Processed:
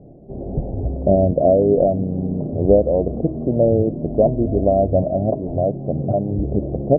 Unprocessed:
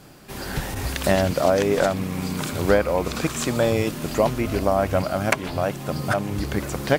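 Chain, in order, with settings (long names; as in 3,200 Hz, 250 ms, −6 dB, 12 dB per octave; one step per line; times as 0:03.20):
Chebyshev low-pass filter 680 Hz, order 5
hum removal 318.3 Hz, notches 29
level +6 dB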